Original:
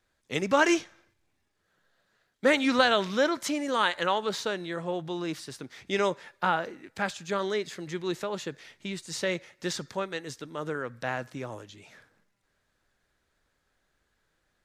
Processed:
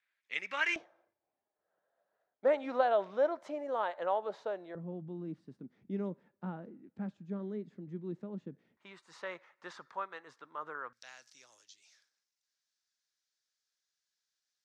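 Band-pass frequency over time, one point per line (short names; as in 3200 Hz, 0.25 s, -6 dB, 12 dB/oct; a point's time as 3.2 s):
band-pass, Q 2.8
2200 Hz
from 0.76 s 660 Hz
from 4.75 s 210 Hz
from 8.77 s 1100 Hz
from 10.93 s 5500 Hz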